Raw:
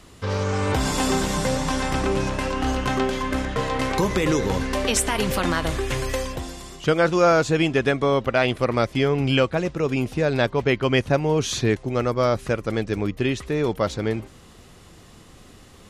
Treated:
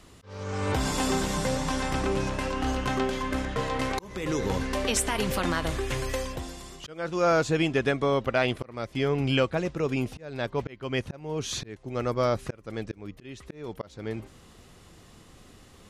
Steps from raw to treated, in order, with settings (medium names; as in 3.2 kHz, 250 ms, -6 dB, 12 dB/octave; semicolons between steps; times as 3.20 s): slow attack 478 ms; trim -4.5 dB